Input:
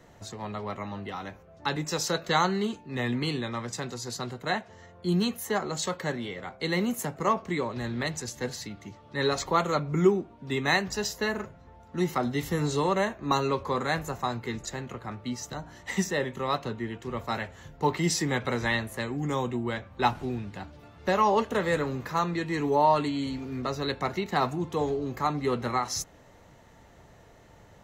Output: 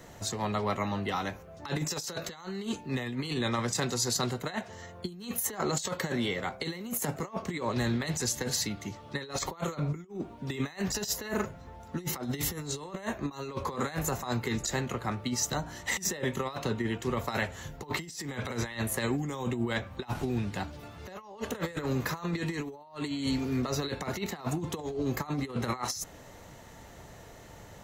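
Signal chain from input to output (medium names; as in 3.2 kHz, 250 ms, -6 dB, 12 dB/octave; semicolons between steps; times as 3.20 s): treble shelf 5.5 kHz +9 dB; compressor with a negative ratio -32 dBFS, ratio -0.5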